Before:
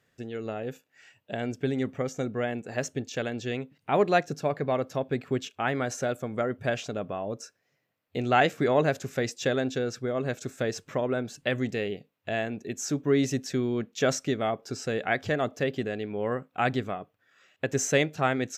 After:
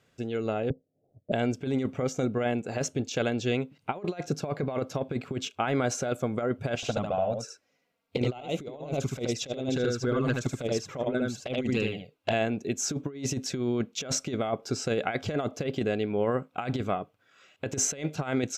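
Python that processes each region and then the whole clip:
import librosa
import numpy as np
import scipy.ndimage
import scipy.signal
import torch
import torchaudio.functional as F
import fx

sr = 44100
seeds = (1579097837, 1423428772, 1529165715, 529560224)

y = fx.chain(x, sr, fx.steep_lowpass(hz=710.0, slope=72),
    fx.transient(attack_db=6, sustain_db=-7),
    fx.tilt_eq(slope=-2.5), at=(0.7, 1.32))
y = fx.chain(y, sr, fx.transient(attack_db=6, sustain_db=0),
    fx.env_flanger(rest_ms=4.4, full_db=-20.0),
    fx.echo_single(ms=76, db=-4.0), at=(6.75, 12.33))
y = scipy.signal.sosfilt(scipy.signal.bessel(2, 11000.0, 'lowpass', norm='mag', fs=sr, output='sos'), y)
y = fx.notch(y, sr, hz=1800.0, q=5.9)
y = fx.over_compress(y, sr, threshold_db=-29.0, ratio=-0.5)
y = F.gain(torch.from_numpy(y), 1.5).numpy()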